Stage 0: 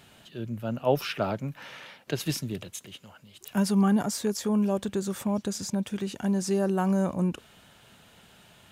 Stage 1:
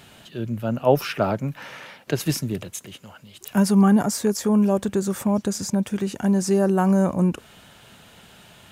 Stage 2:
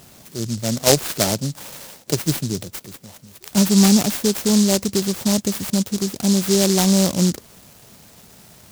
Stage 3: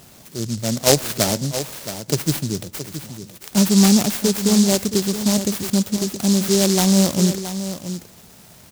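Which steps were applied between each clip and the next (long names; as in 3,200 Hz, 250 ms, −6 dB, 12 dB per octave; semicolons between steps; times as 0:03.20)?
dynamic equaliser 3,500 Hz, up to −6 dB, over −52 dBFS, Q 1.4; level +6.5 dB
short delay modulated by noise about 5,600 Hz, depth 0.21 ms; level +2.5 dB
single-tap delay 672 ms −11 dB; on a send at −23 dB: convolution reverb RT60 0.85 s, pre-delay 38 ms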